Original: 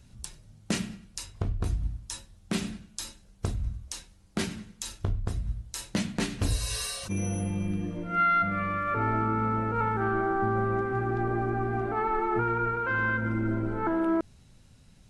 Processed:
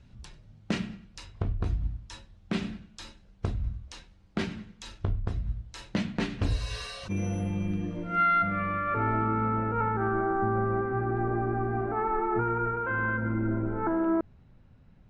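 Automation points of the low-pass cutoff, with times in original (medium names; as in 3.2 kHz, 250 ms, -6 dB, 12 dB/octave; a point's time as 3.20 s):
6.90 s 3.5 kHz
8.17 s 6.7 kHz
8.63 s 3.2 kHz
9.29 s 3.2 kHz
10.10 s 1.7 kHz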